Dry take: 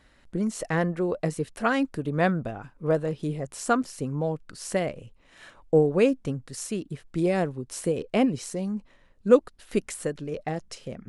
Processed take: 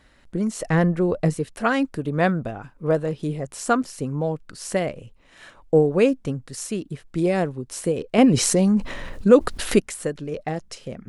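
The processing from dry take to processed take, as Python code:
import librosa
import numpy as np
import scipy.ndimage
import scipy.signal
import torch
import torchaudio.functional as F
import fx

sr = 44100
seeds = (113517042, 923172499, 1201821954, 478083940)

y = fx.low_shelf(x, sr, hz=170.0, db=10.5, at=(0.65, 1.36))
y = fx.env_flatten(y, sr, amount_pct=50, at=(8.18, 9.8))
y = F.gain(torch.from_numpy(y), 3.0).numpy()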